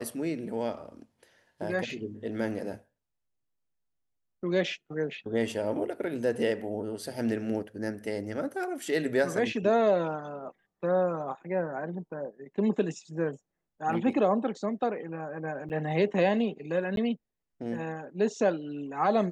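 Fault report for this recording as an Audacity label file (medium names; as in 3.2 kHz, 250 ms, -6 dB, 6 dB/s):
15.690000	15.700000	dropout 9 ms
16.960000	16.970000	dropout 12 ms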